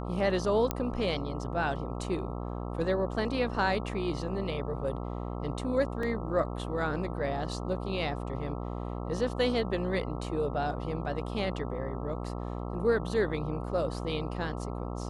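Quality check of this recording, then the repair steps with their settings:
buzz 60 Hz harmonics 22 -36 dBFS
0.71 pop -13 dBFS
6.03 gap 3 ms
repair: de-click; de-hum 60 Hz, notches 22; interpolate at 6.03, 3 ms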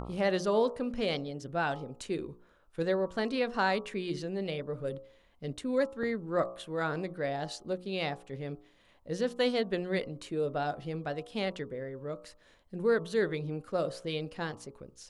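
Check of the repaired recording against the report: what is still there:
none

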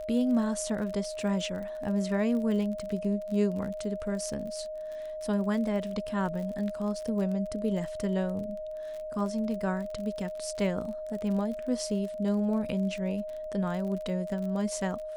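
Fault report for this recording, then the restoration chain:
crackle 43/s -37 dBFS
tone 620 Hz -35 dBFS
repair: de-click; notch 620 Hz, Q 30

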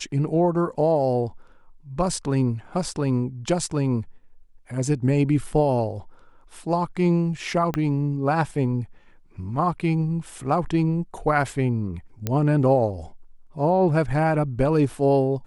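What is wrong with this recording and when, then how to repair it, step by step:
7.74 pop -12 dBFS
12.27 pop -11 dBFS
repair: de-click

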